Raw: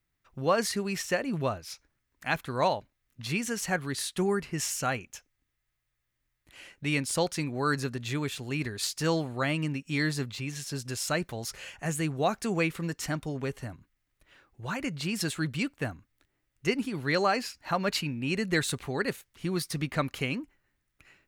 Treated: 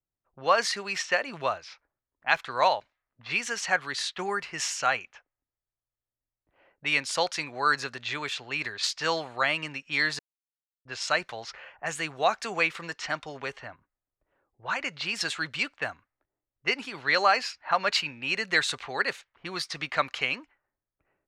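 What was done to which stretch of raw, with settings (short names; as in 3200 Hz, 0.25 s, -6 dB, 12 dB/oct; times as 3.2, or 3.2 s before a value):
10.19–10.85 mute
whole clip: low-pass opened by the level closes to 370 Hz, open at -28 dBFS; three-band isolator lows -20 dB, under 590 Hz, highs -22 dB, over 6700 Hz; gain +6.5 dB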